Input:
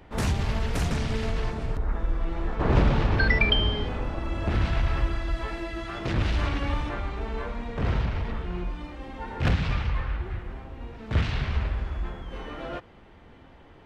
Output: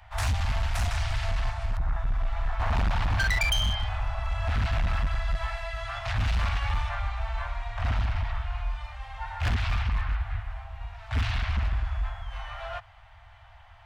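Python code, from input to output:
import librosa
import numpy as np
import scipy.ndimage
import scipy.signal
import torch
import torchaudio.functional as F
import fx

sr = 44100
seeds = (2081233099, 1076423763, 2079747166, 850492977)

y = scipy.signal.sosfilt(scipy.signal.cheby1(4, 1.0, [110.0, 670.0], 'bandstop', fs=sr, output='sos'), x)
y = np.clip(y, -10.0 ** (-23.5 / 20.0), 10.0 ** (-23.5 / 20.0))
y = y * 10.0 ** (2.0 / 20.0)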